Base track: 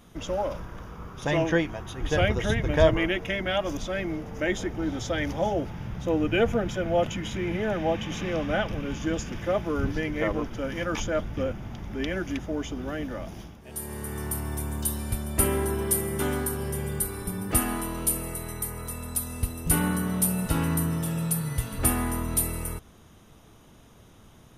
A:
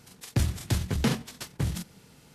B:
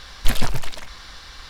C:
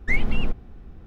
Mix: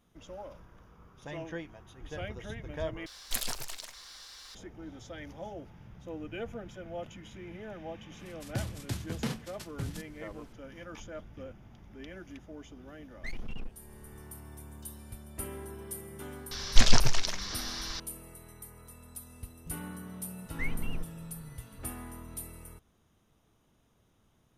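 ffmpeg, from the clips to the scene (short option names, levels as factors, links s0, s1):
-filter_complex "[2:a]asplit=2[s0][s1];[3:a]asplit=2[s2][s3];[0:a]volume=0.158[s4];[s0]bass=f=250:g=-10,treble=f=4000:g=12[s5];[1:a]highpass=80[s6];[s2]volume=7.08,asoftclip=hard,volume=0.141[s7];[s1]lowpass=f=5900:t=q:w=3.6[s8];[s4]asplit=2[s9][s10];[s9]atrim=end=3.064[s11];[s5]atrim=end=1.49,asetpts=PTS-STARTPTS,volume=0.237[s12];[s10]atrim=start=4.546[s13];[s6]atrim=end=2.34,asetpts=PTS-STARTPTS,volume=0.398,afade=t=in:d=0.004:c=hsin,afade=t=out:st=2.336:d=0.004:c=hsin,adelay=8190[s14];[s7]atrim=end=1.06,asetpts=PTS-STARTPTS,volume=0.188,afade=t=in:d=0.004:c=hsin,afade=t=out:st=1.056:d=0.004:c=hsin,adelay=580356S[s15];[s8]atrim=end=1.49,asetpts=PTS-STARTPTS,volume=0.841,afade=t=in:d=0.004:c=hsin,afade=t=out:st=1.486:d=0.004:c=hsin,adelay=16510[s16];[s3]atrim=end=1.06,asetpts=PTS-STARTPTS,volume=0.237,afade=t=in:d=0.004:c=hsin,afade=t=out:st=1.056:d=0.004:c=hsin,adelay=20510[s17];[s11][s12]acrossfade=d=0.004:c1=hsin:c2=hsin[s18];[s18][s13]acrossfade=d=0.004:c1=hsin:c2=hsin[s19];[s19][s14][s15][s16][s17]amix=inputs=5:normalize=0"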